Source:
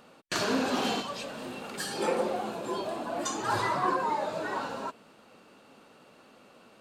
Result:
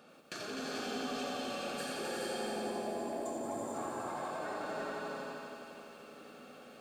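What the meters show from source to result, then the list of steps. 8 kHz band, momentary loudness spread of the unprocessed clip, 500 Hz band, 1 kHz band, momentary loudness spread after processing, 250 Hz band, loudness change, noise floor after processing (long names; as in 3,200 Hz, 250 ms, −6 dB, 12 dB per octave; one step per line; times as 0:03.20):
−7.0 dB, 10 LU, −6.0 dB, −9.5 dB, 14 LU, −6.5 dB, −8.0 dB, −54 dBFS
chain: gain on a spectral selection 0:02.30–0:03.74, 1,100–6,900 Hz −16 dB
high-pass filter 100 Hz
downward compressor, threshold −37 dBFS, peak gain reduction 13.5 dB
notch comb filter 980 Hz
on a send: feedback echo with a high-pass in the loop 252 ms, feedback 58%, high-pass 180 Hz, level −7 dB
on the sum: reverb whose tail is shaped and stops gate 470 ms rising, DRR 0 dB
soft clipping −30 dBFS, distortion −19 dB
feedback echo at a low word length 88 ms, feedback 80%, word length 11 bits, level −5.5 dB
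level −3 dB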